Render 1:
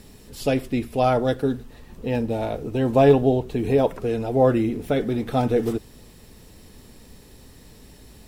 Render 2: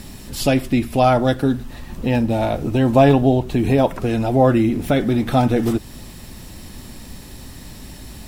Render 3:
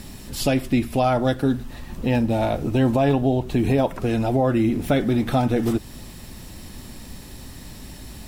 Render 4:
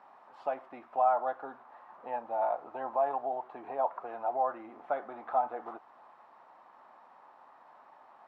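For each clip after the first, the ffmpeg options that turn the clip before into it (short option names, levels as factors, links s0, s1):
-filter_complex "[0:a]equalizer=f=450:w=5.1:g=-12.5,asplit=2[s0][s1];[s1]acompressor=threshold=0.0316:ratio=6,volume=1.33[s2];[s0][s2]amix=inputs=2:normalize=0,volume=1.5"
-af "alimiter=limit=0.398:level=0:latency=1:release=240,volume=0.794"
-af "acrusher=bits=6:mix=0:aa=0.000001,asuperpass=centerf=930:order=4:qfactor=1.7,volume=0.794"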